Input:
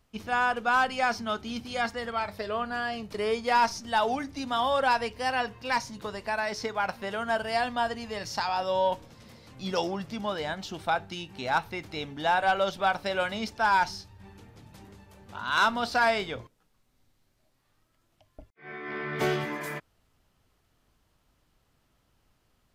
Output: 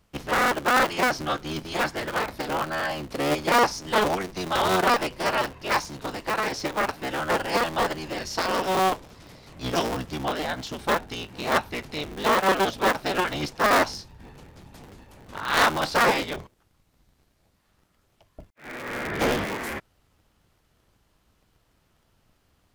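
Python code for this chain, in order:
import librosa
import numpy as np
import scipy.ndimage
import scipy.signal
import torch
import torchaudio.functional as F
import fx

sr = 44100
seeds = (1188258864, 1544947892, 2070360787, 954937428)

y = fx.cycle_switch(x, sr, every=3, mode='inverted')
y = F.gain(torch.from_numpy(y), 3.5).numpy()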